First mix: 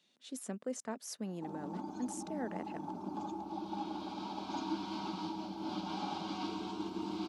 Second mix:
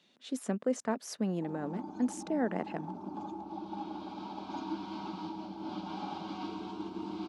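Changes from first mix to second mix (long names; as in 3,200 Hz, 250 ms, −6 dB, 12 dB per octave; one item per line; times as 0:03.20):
speech +8.5 dB
master: add high-shelf EQ 5,000 Hz −11.5 dB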